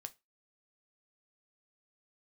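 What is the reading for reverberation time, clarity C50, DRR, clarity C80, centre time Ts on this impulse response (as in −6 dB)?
0.20 s, 22.0 dB, 8.5 dB, 31.0 dB, 3 ms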